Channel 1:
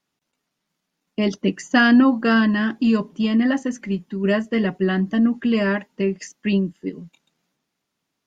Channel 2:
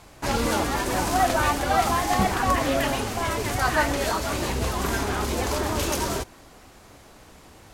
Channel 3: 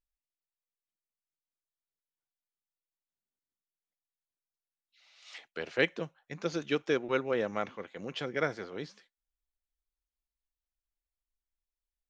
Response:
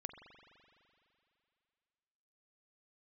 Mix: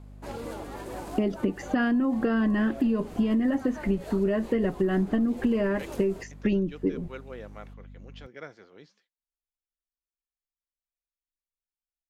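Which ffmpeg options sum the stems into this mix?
-filter_complex "[0:a]asubboost=boost=10.5:cutoff=52,aeval=exprs='val(0)+0.00251*(sin(2*PI*50*n/s)+sin(2*PI*2*50*n/s)/2+sin(2*PI*3*50*n/s)/3+sin(2*PI*4*50*n/s)/4+sin(2*PI*5*50*n/s)/5)':channel_layout=same,bass=frequency=250:gain=8,treble=frequency=4000:gain=-12,volume=-1dB[link_01];[1:a]equalizer=frequency=5700:width=3:gain=-4.5,alimiter=limit=-14dB:level=0:latency=1:release=270,volume=-18dB[link_02];[2:a]volume=-11.5dB[link_03];[link_01][link_02]amix=inputs=2:normalize=0,equalizer=frequency=440:width=0.77:gain=9.5,alimiter=limit=-9dB:level=0:latency=1:release=90,volume=0dB[link_04];[link_03][link_04]amix=inputs=2:normalize=0,acompressor=threshold=-22dB:ratio=6"

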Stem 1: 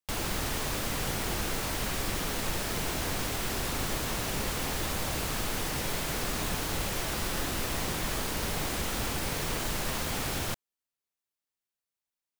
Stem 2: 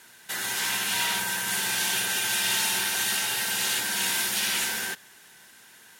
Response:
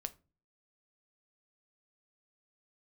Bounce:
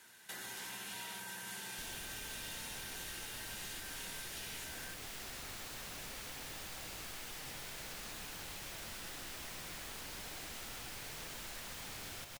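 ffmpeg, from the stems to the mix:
-filter_complex "[0:a]equalizer=frequency=1100:width_type=o:width=0.72:gain=-4,flanger=delay=2.2:depth=8.3:regen=80:speed=0.92:shape=triangular,adelay=1700,volume=-1dB,asplit=2[link_01][link_02];[link_02]volume=-5.5dB[link_03];[1:a]volume=-8dB[link_04];[link_03]aecho=0:1:126:1[link_05];[link_01][link_04][link_05]amix=inputs=3:normalize=0,acrossover=split=780|7700[link_06][link_07][link_08];[link_06]acompressor=threshold=-54dB:ratio=4[link_09];[link_07]acompressor=threshold=-48dB:ratio=4[link_10];[link_08]acompressor=threshold=-52dB:ratio=4[link_11];[link_09][link_10][link_11]amix=inputs=3:normalize=0"

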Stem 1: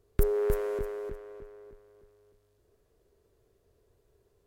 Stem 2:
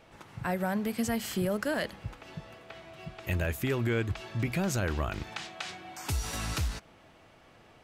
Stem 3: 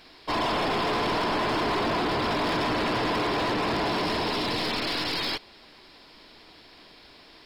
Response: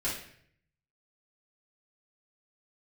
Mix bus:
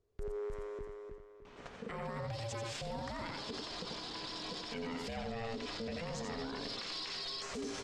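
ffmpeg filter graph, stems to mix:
-filter_complex "[0:a]volume=-10.5dB,asplit=2[link_01][link_02];[link_02]volume=-7.5dB[link_03];[1:a]aeval=exprs='val(0)*sin(2*PI*340*n/s)':channel_layout=same,adelay=1450,volume=3dB,asplit=2[link_04][link_05];[link_05]volume=-9.5dB[link_06];[2:a]acompressor=threshold=-33dB:ratio=6,aexciter=amount=8.5:drive=5.2:freq=3300,adelay=2050,volume=-16dB[link_07];[link_04][link_07]amix=inputs=2:normalize=0,acompressor=threshold=-31dB:ratio=6,volume=0dB[link_08];[link_03][link_06]amix=inputs=2:normalize=0,aecho=0:1:86:1[link_09];[link_01][link_08][link_09]amix=inputs=3:normalize=0,lowpass=frequency=7400:width=0.5412,lowpass=frequency=7400:width=1.3066,alimiter=level_in=8.5dB:limit=-24dB:level=0:latency=1:release=39,volume=-8.5dB"

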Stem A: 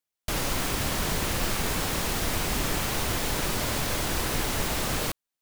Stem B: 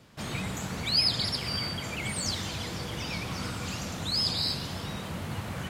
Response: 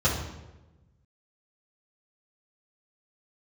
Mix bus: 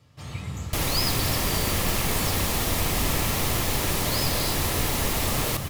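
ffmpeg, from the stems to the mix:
-filter_complex "[0:a]equalizer=frequency=12000:width_type=o:width=0.32:gain=5.5,adelay=450,volume=1.5dB,asplit=2[link_01][link_02];[link_02]volume=-8.5dB[link_03];[1:a]volume=-5.5dB,asplit=2[link_04][link_05];[link_05]volume=-17dB[link_06];[2:a]atrim=start_sample=2205[link_07];[link_06][link_07]afir=irnorm=-1:irlink=0[link_08];[link_03]aecho=0:1:278:1[link_09];[link_01][link_04][link_08][link_09]amix=inputs=4:normalize=0,bandreject=frequency=1500:width=9.2"

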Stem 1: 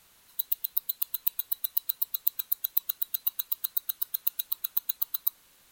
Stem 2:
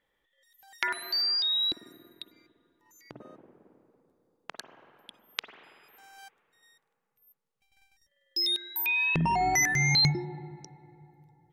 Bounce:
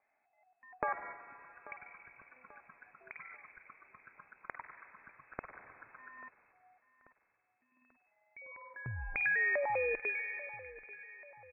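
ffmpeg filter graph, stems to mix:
ffmpeg -i stem1.wav -i stem2.wav -filter_complex "[0:a]agate=range=-8dB:threshold=-52dB:ratio=16:detection=peak,adelay=800,volume=0.5dB[link_01];[1:a]lowshelf=frequency=330:gain=-7,acompressor=threshold=-31dB:ratio=2.5,volume=0.5dB,asplit=2[link_02][link_03];[link_03]volume=-17.5dB,aecho=0:1:838|1676|2514|3352|4190|5028|5866:1|0.47|0.221|0.104|0.0488|0.0229|0.0108[link_04];[link_01][link_02][link_04]amix=inputs=3:normalize=0,lowpass=frequency=2200:width_type=q:width=0.5098,lowpass=frequency=2200:width_type=q:width=0.6013,lowpass=frequency=2200:width_type=q:width=0.9,lowpass=frequency=2200:width_type=q:width=2.563,afreqshift=-2600" out.wav

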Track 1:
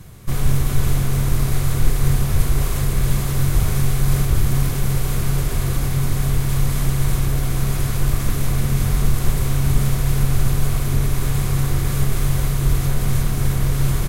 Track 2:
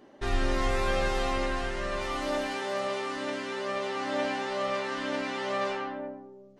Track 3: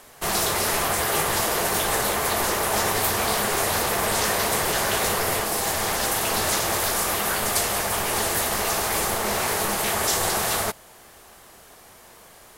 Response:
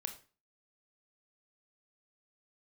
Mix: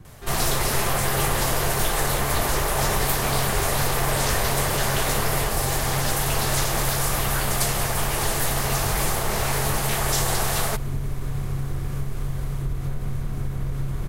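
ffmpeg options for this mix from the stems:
-filter_complex "[0:a]highshelf=frequency=2500:gain=-10.5,acompressor=threshold=-16dB:ratio=6,volume=-5.5dB[link_01];[1:a]volume=-7dB[link_02];[2:a]adelay=50,volume=-1.5dB[link_03];[link_01][link_02][link_03]amix=inputs=3:normalize=0"

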